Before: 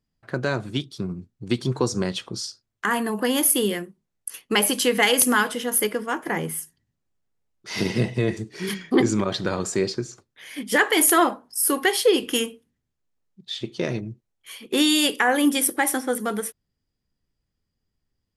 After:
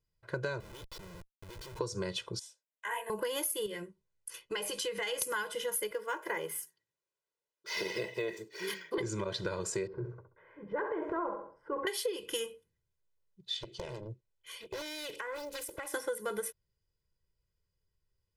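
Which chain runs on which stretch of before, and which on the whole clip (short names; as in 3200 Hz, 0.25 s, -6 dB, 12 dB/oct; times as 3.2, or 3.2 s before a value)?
0.6–1.79 HPF 580 Hz 6 dB/oct + compressor 2.5:1, threshold -36 dBFS + Schmitt trigger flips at -45.5 dBFS
2.39–3.1 HPF 320 Hz 24 dB/oct + fixed phaser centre 1300 Hz, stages 6 + detuned doubles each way 55 cents
3.66–5.22 LPF 9000 Hz + compressor 4:1, threshold -27 dBFS + doubler 16 ms -12 dB
5.91–8.98 HPF 340 Hz + decimation joined by straight lines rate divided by 2×
9.87–11.87 LPF 1300 Hz 24 dB/oct + transient shaper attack -6 dB, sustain +6 dB + feedback echo 66 ms, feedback 30%, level -8 dB
13.57–15.94 Bessel low-pass 10000 Hz + compressor 16:1, threshold -30 dBFS + Doppler distortion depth 0.95 ms
whole clip: comb 2 ms, depth 96%; compressor 12:1, threshold -23 dBFS; gain -8 dB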